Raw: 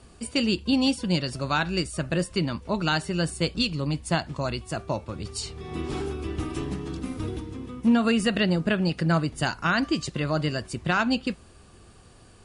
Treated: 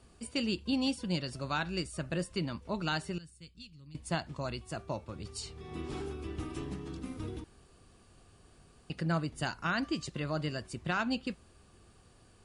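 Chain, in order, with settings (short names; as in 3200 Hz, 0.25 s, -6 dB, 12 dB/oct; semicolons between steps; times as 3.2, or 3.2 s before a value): 3.18–3.95 passive tone stack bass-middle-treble 6-0-2; 7.44–8.9 room tone; gain -8.5 dB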